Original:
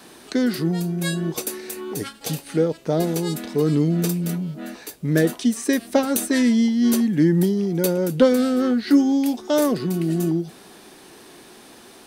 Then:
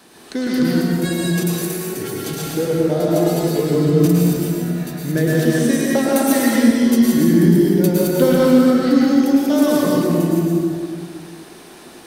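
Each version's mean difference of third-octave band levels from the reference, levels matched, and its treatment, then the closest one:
8.0 dB: delay that plays each chunk backwards 156 ms, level −3 dB
dense smooth reverb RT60 2 s, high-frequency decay 0.6×, pre-delay 95 ms, DRR −4.5 dB
level −2.5 dB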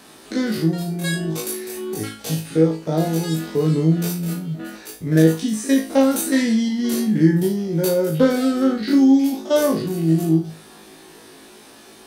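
3.0 dB: spectrum averaged block by block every 50 ms
flutter between parallel walls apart 3.2 metres, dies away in 0.32 s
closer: second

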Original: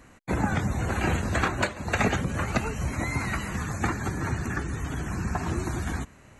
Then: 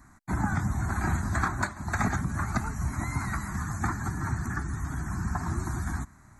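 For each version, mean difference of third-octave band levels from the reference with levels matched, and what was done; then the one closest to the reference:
4.0 dB: parametric band 2,500 Hz −2 dB
phaser with its sweep stopped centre 1,200 Hz, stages 4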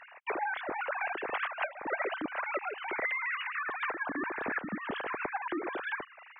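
18.5 dB: three sine waves on the formant tracks
downward compressor 4 to 1, threshold −37 dBFS, peak gain reduction 16.5 dB
level +3.5 dB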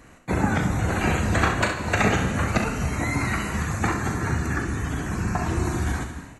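2.0 dB: ambience of single reflections 39 ms −9.5 dB, 67 ms −8.5 dB
reverb whose tail is shaped and stops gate 320 ms flat, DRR 8 dB
level +2.5 dB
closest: third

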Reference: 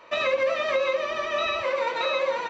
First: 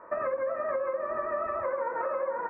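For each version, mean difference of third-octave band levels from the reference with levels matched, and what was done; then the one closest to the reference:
7.0 dB: Butterworth low-pass 1,700 Hz 48 dB per octave
hum removal 53.82 Hz, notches 3
downward compressor 5 to 1, threshold −30 dBFS, peak gain reduction 9.5 dB
level +2 dB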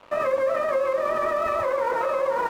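5.0 dB: low-pass filter 1,600 Hz 24 dB per octave
in parallel at −2.5 dB: compressor whose output falls as the input rises −31 dBFS, ratio −0.5
on the sum: dead-zone distortion −43.5 dBFS
level +1 dB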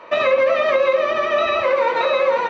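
2.5 dB: low-pass filter 1,600 Hz 6 dB per octave
low-shelf EQ 100 Hz −10 dB
hum removal 107.3 Hz, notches 38
in parallel at +1 dB: brickwall limiter −22.5 dBFS, peak gain reduction 7.5 dB
on the sum: level +5 dB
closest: third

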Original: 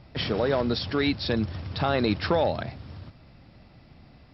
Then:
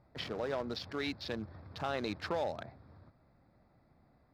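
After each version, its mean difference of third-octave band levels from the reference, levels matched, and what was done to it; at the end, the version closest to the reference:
4.0 dB: adaptive Wiener filter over 15 samples
low-shelf EQ 330 Hz −9 dB
level −8.5 dB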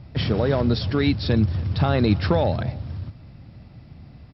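3.0 dB: parametric band 100 Hz +11 dB 2.5 octaves
single-tap delay 284 ms −22.5 dB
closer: second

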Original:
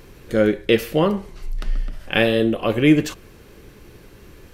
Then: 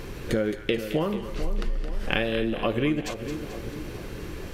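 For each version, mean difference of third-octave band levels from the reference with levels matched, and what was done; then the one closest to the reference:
10.0 dB: high-shelf EQ 10,000 Hz −7 dB
downward compressor 12 to 1, threshold −30 dBFS, peak gain reduction 21 dB
echo with a time of its own for lows and highs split 1,000 Hz, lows 446 ms, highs 218 ms, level −9.5 dB
level +7.5 dB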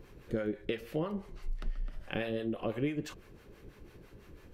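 4.5 dB: parametric band 14,000 Hz −7.5 dB 2.4 octaves
downward compressor 6 to 1, threshold −22 dBFS, peak gain reduction 12.5 dB
two-band tremolo in antiphase 6 Hz, depth 70%, crossover 630 Hz
level −5.5 dB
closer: second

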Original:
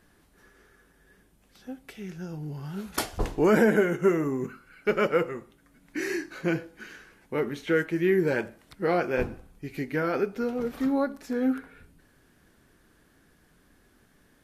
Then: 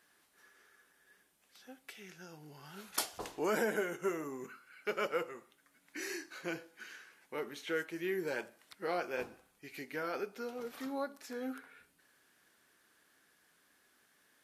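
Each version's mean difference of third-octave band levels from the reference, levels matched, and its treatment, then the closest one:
6.0 dB: dynamic equaliser 1,900 Hz, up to −6 dB, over −44 dBFS, Q 1.1
high-pass filter 1,300 Hz 6 dB per octave
level −2 dB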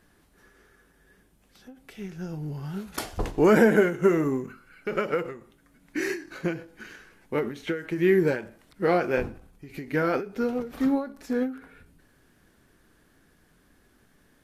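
2.5 dB: in parallel at −8.5 dB: slack as between gear wheels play −34.5 dBFS
on the sum: every ending faded ahead of time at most 130 dB per second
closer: second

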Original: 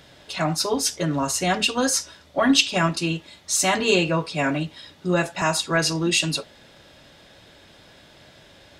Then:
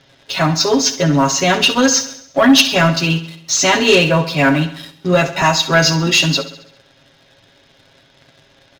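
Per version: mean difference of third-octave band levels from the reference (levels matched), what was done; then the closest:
5.5 dB: elliptic low-pass filter 6,500 Hz
comb filter 7.4 ms, depth 66%
leveller curve on the samples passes 2
on a send: repeating echo 67 ms, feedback 56%, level −14 dB
on the sum: level +1 dB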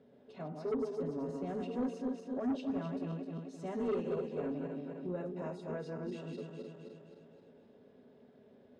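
10.5 dB: feedback delay that plays each chunk backwards 130 ms, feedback 69%, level −4.5 dB
in parallel at +2.5 dB: downward compressor, threshold −28 dBFS, peak gain reduction 15.5 dB
on the sum: pair of resonant band-passes 320 Hz, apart 0.74 octaves
soft clipping −21 dBFS, distortion −12 dB
level −7.5 dB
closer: first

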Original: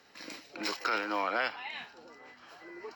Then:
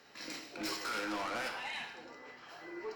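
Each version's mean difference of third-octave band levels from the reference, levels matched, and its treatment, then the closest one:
6.5 dB: dynamic equaliser 7,700 Hz, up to +5 dB, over −53 dBFS, Q 0.77
soft clipping −36 dBFS, distortion −5 dB
dense smooth reverb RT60 0.99 s, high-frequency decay 0.75×, DRR 3.5 dB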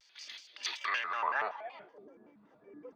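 10.0 dB: notch comb filter 320 Hz
band-pass filter sweep 3,800 Hz → 250 Hz, 0:00.61–0:02.25
pitch modulation by a square or saw wave square 5.3 Hz, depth 250 cents
level +5.5 dB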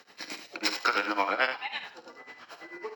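3.0 dB: low-shelf EQ 360 Hz −5 dB
amplitude tremolo 9.1 Hz, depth 97%
high-pass filter 79 Hz
ambience of single reflections 51 ms −13.5 dB, 74 ms −10 dB
level +8.5 dB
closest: third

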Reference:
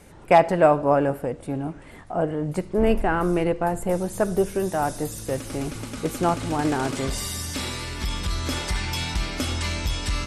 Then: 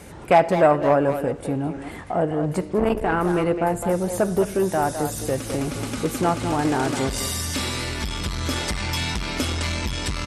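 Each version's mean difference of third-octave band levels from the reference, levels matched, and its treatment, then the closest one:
2.5 dB: high-pass filter 45 Hz 12 dB per octave
in parallel at +3 dB: downward compressor, threshold −34 dBFS, peak gain reduction 22 dB
on the sum: far-end echo of a speakerphone 210 ms, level −8 dB
saturating transformer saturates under 580 Hz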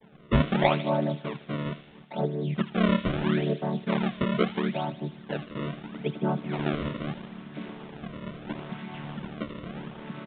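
10.5 dB: channel vocoder with a chord as carrier major triad, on D3
sample-and-hold swept by an LFO 31×, swing 160% 0.76 Hz
delay with a high-pass on its return 76 ms, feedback 66%, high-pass 2,800 Hz, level −7 dB
downsampling to 8,000 Hz
level −4 dB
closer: first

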